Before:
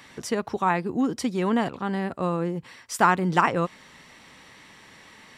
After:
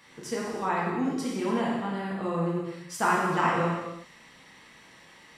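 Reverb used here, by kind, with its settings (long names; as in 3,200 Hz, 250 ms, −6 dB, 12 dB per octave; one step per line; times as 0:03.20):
reverb whose tail is shaped and stops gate 420 ms falling, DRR −5.5 dB
level −9.5 dB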